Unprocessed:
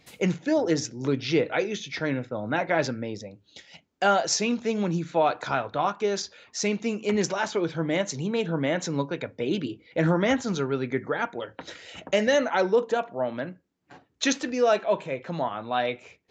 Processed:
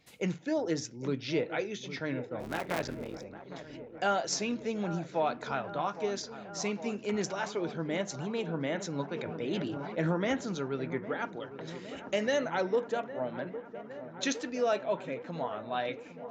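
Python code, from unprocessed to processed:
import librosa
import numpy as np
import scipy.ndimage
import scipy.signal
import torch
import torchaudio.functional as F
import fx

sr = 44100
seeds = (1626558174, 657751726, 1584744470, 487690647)

y = fx.cycle_switch(x, sr, every=3, mode='muted', at=(2.39, 3.23), fade=0.02)
y = fx.echo_wet_lowpass(y, sr, ms=810, feedback_pct=75, hz=1600.0, wet_db=-13.0)
y = fx.sustainer(y, sr, db_per_s=23.0, at=(9.14, 10.01))
y = F.gain(torch.from_numpy(y), -7.5).numpy()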